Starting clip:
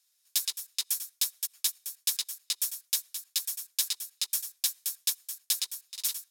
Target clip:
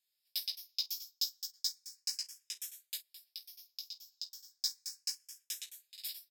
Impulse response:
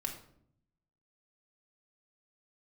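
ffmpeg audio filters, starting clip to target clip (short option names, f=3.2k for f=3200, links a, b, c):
-filter_complex "[0:a]asettb=1/sr,asplit=3[a][b][c];[a]atrim=end=0.864[d];[b]atrim=start=0.86:end=1.97,asetpts=PTS-STARTPTS,afade=t=in:d=0.004:c=qsin,afade=t=out:st=1.106:d=0.004:c=qsin,equalizer=f=530:w=0.43:g=-5.5[e];[c]atrim=start=1.966[f];[d][e]acrossfade=d=0.004:c1=hsin:c2=qsin[g];[g][f]acrossfade=d=0.004:c1=qsin:c2=hsin,asplit=3[h][i][j];[h]afade=t=out:st=2.96:d=0.02[k];[i]acompressor=threshold=-38dB:ratio=6,afade=t=in:st=2.96:d=0.02,afade=t=out:st=4.61:d=0.02[l];[j]afade=t=in:st=4.61:d=0.02[m];[k][l][m]amix=inputs=3:normalize=0,equalizer=f=315:t=o:w=0.33:g=-5,equalizer=f=1.25k:t=o:w=0.33:g=-12,equalizer=f=5k:t=o:w=0.33:g=11,equalizer=f=10k:t=o:w=0.33:g=-11,aecho=1:1:17|49:0.501|0.168,asplit=2[n][o];[o]afreqshift=0.34[p];[n][p]amix=inputs=2:normalize=1,volume=-8.5dB"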